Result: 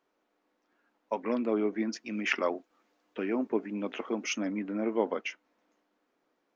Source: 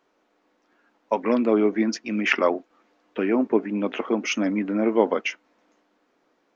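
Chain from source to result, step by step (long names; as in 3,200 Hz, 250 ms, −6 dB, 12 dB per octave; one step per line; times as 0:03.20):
0:01.96–0:04.37: high-shelf EQ 5,400 Hz +9 dB
level −9 dB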